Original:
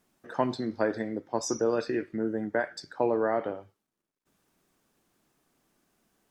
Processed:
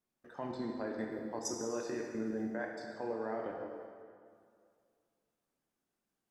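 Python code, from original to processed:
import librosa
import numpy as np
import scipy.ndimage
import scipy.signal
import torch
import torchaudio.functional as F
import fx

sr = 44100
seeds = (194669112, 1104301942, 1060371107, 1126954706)

y = fx.level_steps(x, sr, step_db=17)
y = fx.high_shelf(y, sr, hz=9600.0, db=12.0, at=(1.0, 2.51))
y = fx.rev_plate(y, sr, seeds[0], rt60_s=2.2, hf_ratio=0.8, predelay_ms=0, drr_db=0.5)
y = y * librosa.db_to_amplitude(-5.5)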